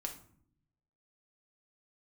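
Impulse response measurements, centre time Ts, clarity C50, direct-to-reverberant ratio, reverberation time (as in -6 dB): 14 ms, 9.5 dB, 2.5 dB, 0.60 s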